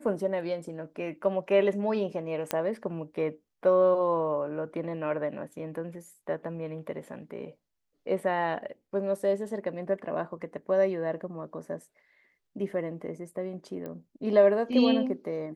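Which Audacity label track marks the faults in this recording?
2.510000	2.510000	click −12 dBFS
13.860000	13.860000	click −26 dBFS

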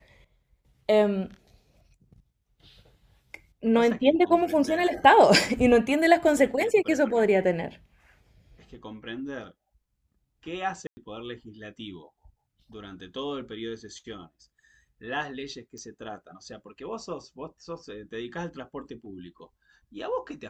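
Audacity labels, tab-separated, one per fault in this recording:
10.870000	10.970000	drop-out 100 ms
15.780000	15.780000	click −33 dBFS

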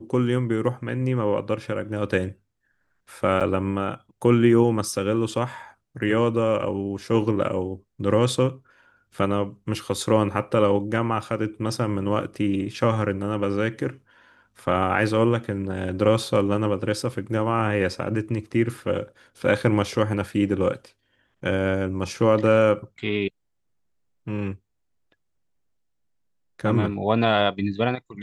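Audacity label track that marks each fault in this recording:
3.400000	3.410000	drop-out 7 ms

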